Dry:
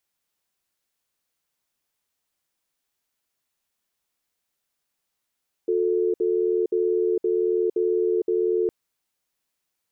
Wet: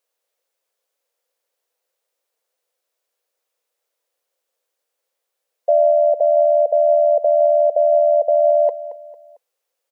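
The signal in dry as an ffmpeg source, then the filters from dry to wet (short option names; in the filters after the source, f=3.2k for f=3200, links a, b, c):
-f lavfi -i "aevalsrc='0.0794*(sin(2*PI*360*t)+sin(2*PI*441*t))*clip(min(mod(t,0.52),0.46-mod(t,0.52))/0.005,0,1)':d=3.01:s=44100"
-af "afftfilt=real='real(if(between(b,1,1008),(2*floor((b-1)/48)+1)*48-b,b),0)':imag='imag(if(between(b,1,1008),(2*floor((b-1)/48)+1)*48-b,b),0)*if(between(b,1,1008),-1,1)':win_size=2048:overlap=0.75,highpass=f=510:t=q:w=5.4,aecho=1:1:225|450|675:0.2|0.0718|0.0259"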